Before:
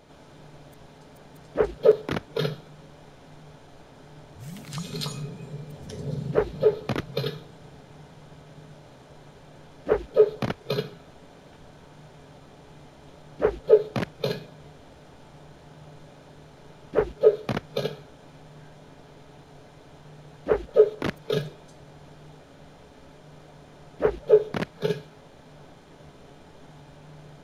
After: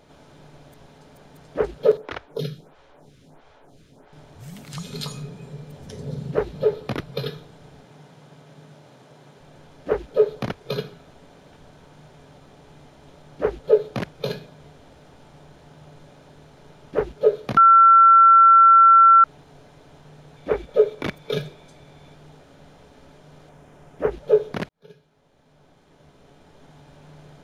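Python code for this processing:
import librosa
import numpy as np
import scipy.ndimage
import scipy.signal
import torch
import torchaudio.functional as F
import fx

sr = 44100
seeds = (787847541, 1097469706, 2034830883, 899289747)

y = fx.stagger_phaser(x, sr, hz=1.5, at=(1.97, 4.13))
y = fx.notch(y, sr, hz=6400.0, q=12.0, at=(6.76, 7.34))
y = fx.highpass(y, sr, hz=110.0, slope=24, at=(7.84, 9.41))
y = fx.small_body(y, sr, hz=(2300.0, 3500.0), ring_ms=30, db=12, at=(20.36, 22.16))
y = fx.peak_eq(y, sr, hz=4200.0, db=-8.5, octaves=0.64, at=(23.49, 24.12))
y = fx.edit(y, sr, fx.bleep(start_s=17.57, length_s=1.67, hz=1350.0, db=-8.0),
    fx.fade_in_span(start_s=24.69, length_s=2.37), tone=tone)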